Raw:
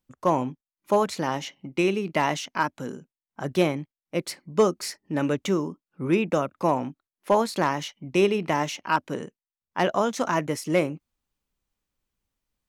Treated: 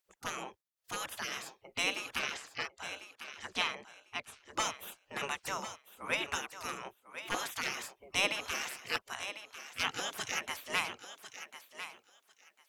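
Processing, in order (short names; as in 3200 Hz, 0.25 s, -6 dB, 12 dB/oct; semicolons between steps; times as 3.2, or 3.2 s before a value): 2.19–4.54 air absorption 83 m; spectral gate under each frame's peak -20 dB weak; thinning echo 1.048 s, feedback 18%, high-pass 320 Hz, level -11 dB; gain +3.5 dB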